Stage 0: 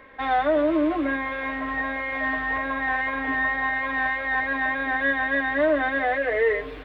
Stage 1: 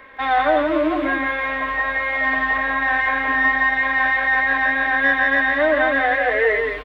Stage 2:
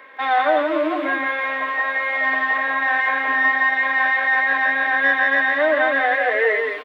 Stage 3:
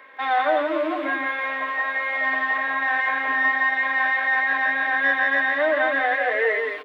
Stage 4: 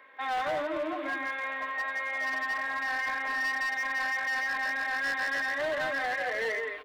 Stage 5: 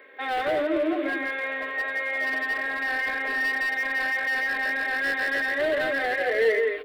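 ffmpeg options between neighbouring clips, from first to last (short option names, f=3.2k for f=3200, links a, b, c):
-filter_complex "[0:a]acrossover=split=700[a][b];[b]acontrast=52[c];[a][c]amix=inputs=2:normalize=0,aecho=1:1:170:0.596"
-af "highpass=330"
-af "bandreject=f=60:t=h:w=6,bandreject=f=120:t=h:w=6,bandreject=f=180:t=h:w=6,bandreject=f=240:t=h:w=6,bandreject=f=300:t=h:w=6,bandreject=f=360:t=h:w=6,bandreject=f=420:t=h:w=6,bandreject=f=480:t=h:w=6,bandreject=f=540:t=h:w=6,volume=-3dB"
-af "asubboost=boost=3.5:cutoff=120,asoftclip=type=hard:threshold=-19.5dB,volume=-7.5dB"
-af "equalizer=f=160:t=o:w=0.67:g=-6,equalizer=f=400:t=o:w=0.67:g=10,equalizer=f=1k:t=o:w=0.67:g=-11,equalizer=f=6.3k:t=o:w=0.67:g=-11,volume=6.5dB"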